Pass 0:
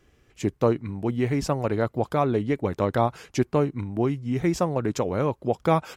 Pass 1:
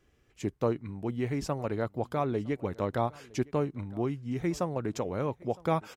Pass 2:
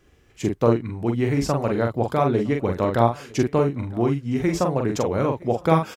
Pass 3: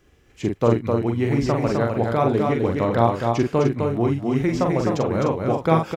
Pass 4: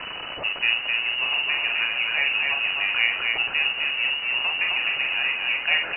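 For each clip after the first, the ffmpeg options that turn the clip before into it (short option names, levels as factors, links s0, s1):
-af "aecho=1:1:961:0.0668,volume=0.447"
-filter_complex "[0:a]asplit=2[s0][s1];[s1]adelay=43,volume=0.596[s2];[s0][s2]amix=inputs=2:normalize=0,volume=2.66"
-filter_complex "[0:a]asplit=2[s0][s1];[s1]aecho=0:1:257:0.631[s2];[s0][s2]amix=inputs=2:normalize=0,acrossover=split=5600[s3][s4];[s4]acompressor=threshold=0.00251:ratio=4:attack=1:release=60[s5];[s3][s5]amix=inputs=2:normalize=0"
-af "aeval=exprs='val(0)+0.5*0.0891*sgn(val(0))':c=same,tiltshelf=f=1300:g=-3.5,lowpass=f=2600:t=q:w=0.5098,lowpass=f=2600:t=q:w=0.6013,lowpass=f=2600:t=q:w=0.9,lowpass=f=2600:t=q:w=2.563,afreqshift=-3000,volume=0.631"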